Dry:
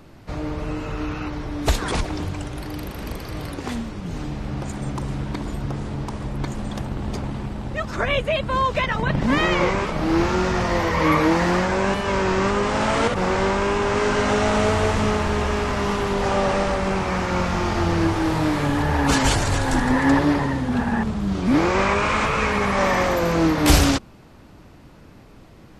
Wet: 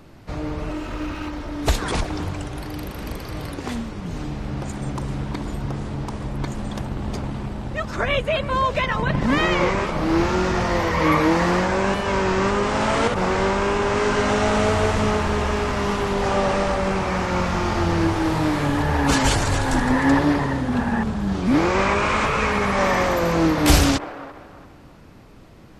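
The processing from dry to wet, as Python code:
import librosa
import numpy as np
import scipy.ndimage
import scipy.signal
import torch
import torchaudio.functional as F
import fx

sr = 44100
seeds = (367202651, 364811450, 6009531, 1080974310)

y = fx.lower_of_two(x, sr, delay_ms=3.2, at=(0.69, 1.62))
y = fx.echo_wet_bandpass(y, sr, ms=338, feedback_pct=31, hz=830.0, wet_db=-11)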